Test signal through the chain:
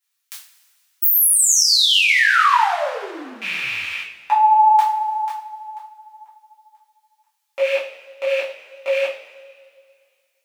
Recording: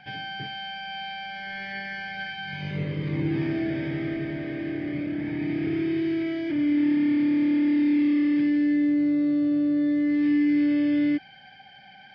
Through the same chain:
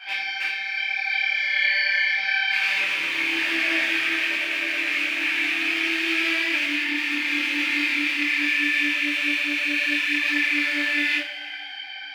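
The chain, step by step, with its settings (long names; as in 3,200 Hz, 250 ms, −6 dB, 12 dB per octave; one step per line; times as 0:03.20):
loose part that buzzes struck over −37 dBFS, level −27 dBFS
high-pass filter 1,500 Hz 12 dB per octave
coupled-rooms reverb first 0.39 s, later 2.2 s, from −18 dB, DRR −7 dB
boost into a limiter +14 dB
micro pitch shift up and down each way 27 cents
level −2 dB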